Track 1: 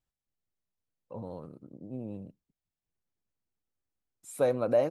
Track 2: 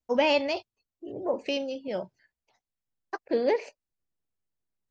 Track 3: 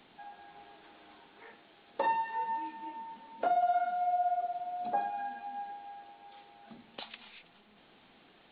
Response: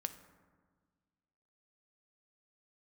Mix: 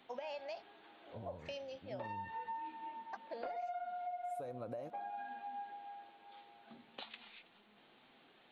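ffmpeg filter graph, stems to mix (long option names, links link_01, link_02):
-filter_complex "[0:a]agate=range=-10dB:threshold=-45dB:ratio=16:detection=peak,equalizer=frequency=81:width=2.2:gain=13.5,acompressor=threshold=-28dB:ratio=2.5,volume=-13.5dB,asplit=3[link_01][link_02][link_03];[link_02]volume=-10dB[link_04];[1:a]lowshelf=frequency=490:width_type=q:width=3:gain=-8,acompressor=threshold=-27dB:ratio=6,volume=-12.5dB[link_05];[2:a]lowshelf=frequency=120:gain=-9.5,asoftclip=type=tanh:threshold=-22.5dB,flanger=delay=7.4:depth=2:regen=-55:speed=0.73:shape=triangular,volume=0dB[link_06];[link_03]apad=whole_len=375614[link_07];[link_06][link_07]sidechaincompress=threshold=-53dB:ratio=4:attack=30:release=434[link_08];[3:a]atrim=start_sample=2205[link_09];[link_04][link_09]afir=irnorm=-1:irlink=0[link_10];[link_01][link_05][link_08][link_10]amix=inputs=4:normalize=0,acompressor=threshold=-40dB:ratio=6"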